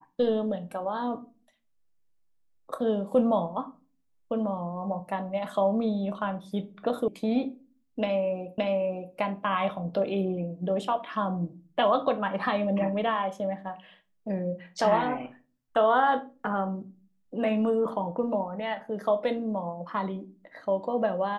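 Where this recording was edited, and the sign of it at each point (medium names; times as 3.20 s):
7.08 s: sound stops dead
8.58 s: repeat of the last 0.57 s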